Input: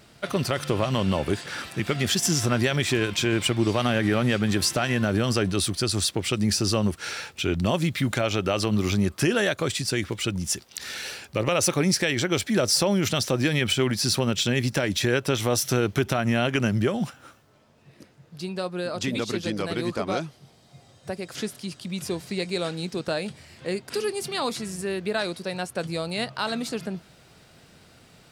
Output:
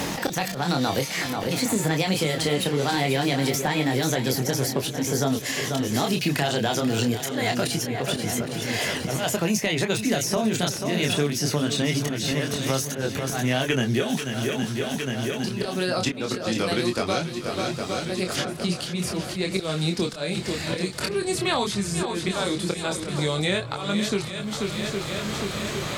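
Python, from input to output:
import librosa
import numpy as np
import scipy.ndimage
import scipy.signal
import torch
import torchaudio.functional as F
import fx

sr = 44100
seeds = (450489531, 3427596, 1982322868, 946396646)

y = fx.speed_glide(x, sr, from_pct=134, to_pct=84)
y = fx.auto_swell(y, sr, attack_ms=418.0)
y = fx.chorus_voices(y, sr, voices=2, hz=0.23, base_ms=25, depth_ms=3.2, mix_pct=40)
y = fx.echo_swing(y, sr, ms=811, ratio=1.5, feedback_pct=35, wet_db=-12)
y = fx.band_squash(y, sr, depth_pct=100)
y = y * librosa.db_to_amplitude(4.0)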